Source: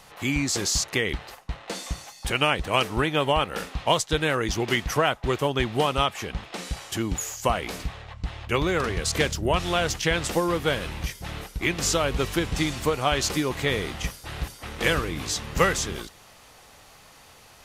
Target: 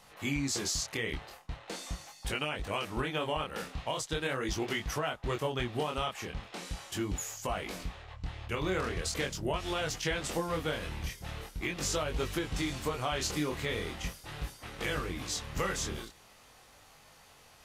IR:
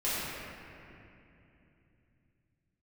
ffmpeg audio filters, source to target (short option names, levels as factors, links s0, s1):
-af "flanger=delay=19.5:depth=7.5:speed=0.41,alimiter=limit=0.126:level=0:latency=1:release=132,volume=0.631"